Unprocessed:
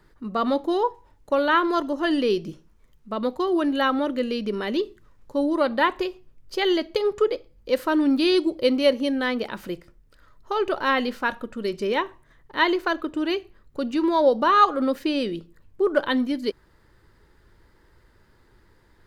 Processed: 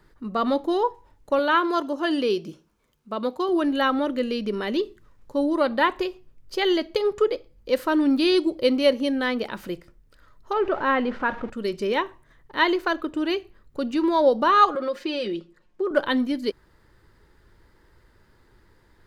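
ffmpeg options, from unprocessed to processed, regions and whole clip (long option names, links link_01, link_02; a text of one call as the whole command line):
ffmpeg -i in.wav -filter_complex "[0:a]asettb=1/sr,asplit=3[link_01][link_02][link_03];[link_01]atrim=end=1.394[link_04];[link_02]atrim=start=1.39:end=3.49,asetpts=PTS-STARTPTS,afade=type=in:duration=0.004:curve=qsin,afade=type=out:start_time=2.096:duration=0.004:curve=qsin,highpass=frequency=210:poles=1,bandreject=frequency=1900:width=9.7[link_05];[link_03]atrim=start=3.486[link_06];[link_04][link_05]acrossfade=duration=0.004:curve1=hsin:curve2=qsin[link_07];[link_07][link_06]acrossfade=duration=0.004:curve1=qsin:curve2=hsin,asettb=1/sr,asplit=3[link_08][link_09][link_10];[link_08]atrim=end=10.534[link_11];[link_09]atrim=start=10.53:end=11.5,asetpts=PTS-STARTPTS,afade=type=in:duration=0.004:curve=qsin,afade=type=out:start_time=0.966:duration=0.004:curve=qsin,aeval=exprs='val(0)+0.5*0.0211*sgn(val(0))':channel_layout=same,lowpass=2000[link_12];[link_10]atrim=start=11.496[link_13];[link_11][link_12]acrossfade=duration=0.004:curve1=hsin:curve2=qsin[link_14];[link_14][link_13]acrossfade=duration=0.004:curve1=qsin:curve2=hsin,asettb=1/sr,asplit=3[link_15][link_16][link_17];[link_15]atrim=end=14.754[link_18];[link_16]atrim=start=14.75:end=15.91,asetpts=PTS-STARTPTS,afade=type=in:duration=0.004:curve=qsin,afade=type=out:start_time=1.156:duration=0.004:curve=qsin,acrossover=split=230 7600:gain=0.2 1 0.178[link_19][link_20][link_21];[link_19][link_20][link_21]amix=inputs=3:normalize=0,aecho=1:1:5.6:0.65,atrim=end_sample=51156,acompressor=threshold=-24dB:ratio=2.5:attack=3.2:release=140:knee=1:detection=peak[link_22];[link_17]atrim=start=15.906[link_23];[link_18][link_22]acrossfade=duration=0.004:curve1=hsin:curve2=qsin[link_24];[link_24][link_23]acrossfade=duration=0.004:curve1=qsin:curve2=hsin" out.wav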